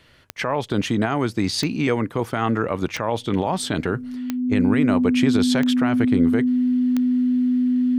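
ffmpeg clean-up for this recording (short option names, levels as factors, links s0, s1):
-af "adeclick=t=4,bandreject=f=250:w=30"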